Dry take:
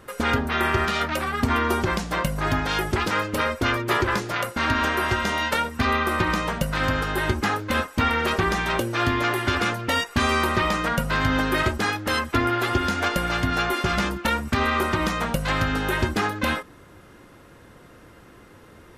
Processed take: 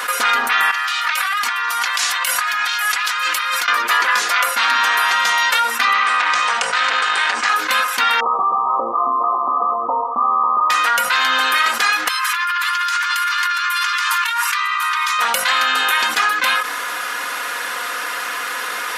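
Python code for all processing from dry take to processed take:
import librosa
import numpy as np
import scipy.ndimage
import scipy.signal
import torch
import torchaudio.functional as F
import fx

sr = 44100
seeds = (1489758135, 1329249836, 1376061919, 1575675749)

y = fx.chain(x, sr, fx.highpass(hz=340.0, slope=12),
    fx.peak_eq(hz=440.0, db=-13.5, octaves=1.8),
    fx.over_compress(threshold_db=-39.0, ratio=-1.0), at=(0.71, 3.68))
y = fx.chain(y, sr, fx.cheby1_bandpass(low_hz=100.0, high_hz=8700.0, order=5),
    fx.transformer_sat(knee_hz=1400.0), at=(5.93, 7.49))
y = fx.chain(y, sr, fx.brickwall_lowpass(high_hz=1300.0),
    fx.echo_single(ms=129, db=-21.0), at=(8.2, 10.7))
y = fx.chain(y, sr, fx.brickwall_highpass(low_hz=900.0),
    fx.over_compress(threshold_db=-37.0, ratio=-1.0), at=(12.08, 15.19))
y = scipy.signal.sosfilt(scipy.signal.cheby1(2, 1.0, 1400.0, 'highpass', fs=sr, output='sos'), y)
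y = y + 0.61 * np.pad(y, (int(4.1 * sr / 1000.0), 0))[:len(y)]
y = fx.env_flatten(y, sr, amount_pct=70)
y = y * librosa.db_to_amplitude(7.0)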